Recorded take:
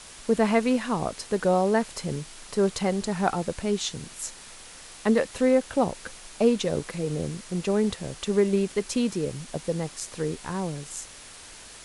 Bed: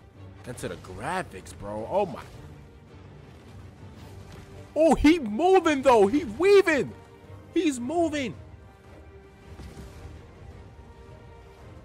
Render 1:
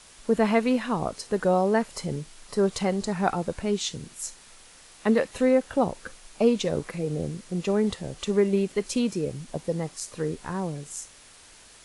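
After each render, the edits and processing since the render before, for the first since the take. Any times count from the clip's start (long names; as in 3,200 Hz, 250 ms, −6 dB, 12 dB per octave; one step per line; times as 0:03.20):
noise reduction from a noise print 6 dB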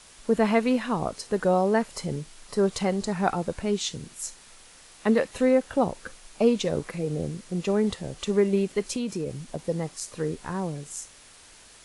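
0:08.83–0:09.67: downward compressor, threshold −25 dBFS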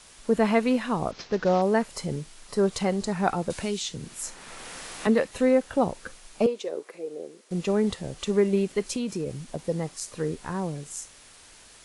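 0:01.11–0:01.62: variable-slope delta modulation 32 kbit/s
0:03.50–0:05.07: multiband upward and downward compressor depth 70%
0:06.46–0:07.51: four-pole ladder high-pass 330 Hz, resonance 45%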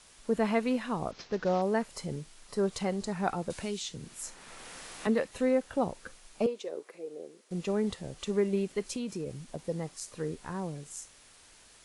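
level −6 dB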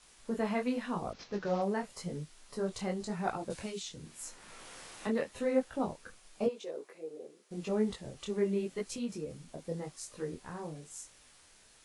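micro pitch shift up and down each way 31 cents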